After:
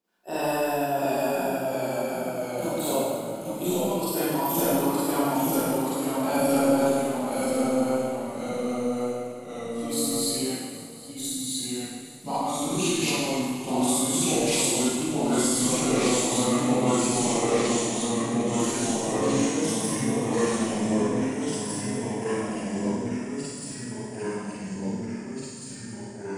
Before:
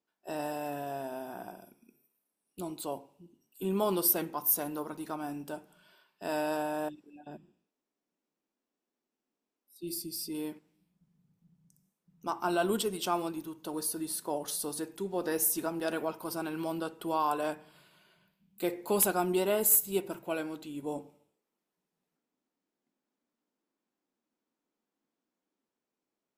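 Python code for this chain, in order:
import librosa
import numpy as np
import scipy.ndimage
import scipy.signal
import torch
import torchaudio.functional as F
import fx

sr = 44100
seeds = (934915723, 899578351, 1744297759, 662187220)

p1 = fx.pitch_glide(x, sr, semitones=-7.0, runs='starting unshifted')
p2 = fx.over_compress(p1, sr, threshold_db=-34.0, ratio=-0.5)
p3 = p2 + fx.echo_feedback(p2, sr, ms=768, feedback_pct=46, wet_db=-18.5, dry=0)
p4 = fx.rev_schroeder(p3, sr, rt60_s=1.5, comb_ms=32, drr_db=-10.0)
y = fx.echo_pitch(p4, sr, ms=674, semitones=-1, count=3, db_per_echo=-3.0)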